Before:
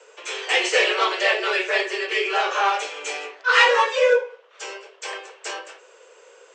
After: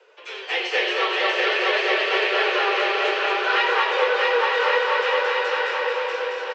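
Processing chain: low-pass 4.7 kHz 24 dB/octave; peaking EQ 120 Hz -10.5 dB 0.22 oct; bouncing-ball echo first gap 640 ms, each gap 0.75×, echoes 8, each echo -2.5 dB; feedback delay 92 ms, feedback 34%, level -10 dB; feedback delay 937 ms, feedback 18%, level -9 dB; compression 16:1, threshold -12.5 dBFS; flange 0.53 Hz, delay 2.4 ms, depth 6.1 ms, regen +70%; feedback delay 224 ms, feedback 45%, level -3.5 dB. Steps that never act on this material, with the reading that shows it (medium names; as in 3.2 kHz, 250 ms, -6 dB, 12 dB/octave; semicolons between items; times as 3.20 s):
peaking EQ 120 Hz: input has nothing below 340 Hz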